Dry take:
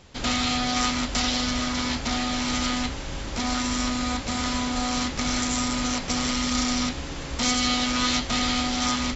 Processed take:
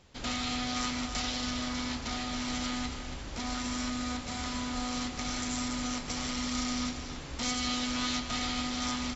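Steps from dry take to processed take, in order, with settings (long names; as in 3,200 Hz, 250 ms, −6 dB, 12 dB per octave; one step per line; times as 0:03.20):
single-tap delay 279 ms −9 dB
level −9 dB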